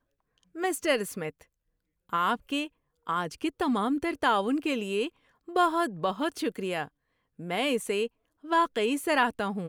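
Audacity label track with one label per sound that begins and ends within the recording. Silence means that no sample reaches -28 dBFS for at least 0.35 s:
0.600000	1.290000	sound
2.130000	2.640000	sound
3.090000	5.070000	sound
5.560000	6.830000	sound
7.500000	8.060000	sound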